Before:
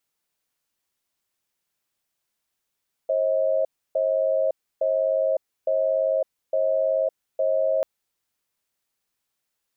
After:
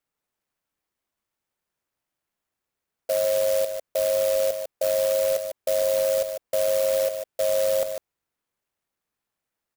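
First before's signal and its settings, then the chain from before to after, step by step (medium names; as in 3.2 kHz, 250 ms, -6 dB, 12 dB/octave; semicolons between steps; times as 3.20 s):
cadence 536 Hz, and 635 Hz, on 0.56 s, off 0.30 s, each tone -22 dBFS 4.74 s
distance through air 68 m; on a send: delay 149 ms -8 dB; on the sum: sampling jitter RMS 0.075 ms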